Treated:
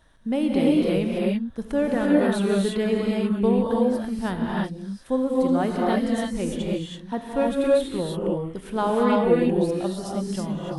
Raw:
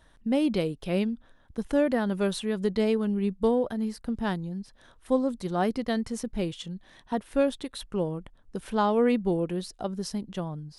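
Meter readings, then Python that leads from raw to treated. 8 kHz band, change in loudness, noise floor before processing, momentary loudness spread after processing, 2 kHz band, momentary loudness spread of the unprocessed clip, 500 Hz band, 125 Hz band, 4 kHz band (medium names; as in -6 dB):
+3.0 dB, +4.5 dB, -59 dBFS, 9 LU, +4.5 dB, 13 LU, +5.0 dB, +4.5 dB, +3.0 dB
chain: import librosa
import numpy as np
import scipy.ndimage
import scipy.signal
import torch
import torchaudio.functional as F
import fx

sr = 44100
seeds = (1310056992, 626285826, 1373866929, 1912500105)

y = fx.dynamic_eq(x, sr, hz=5300.0, q=1.9, threshold_db=-57.0, ratio=4.0, max_db=-7)
y = fx.rev_gated(y, sr, seeds[0], gate_ms=360, shape='rising', drr_db=-3.0)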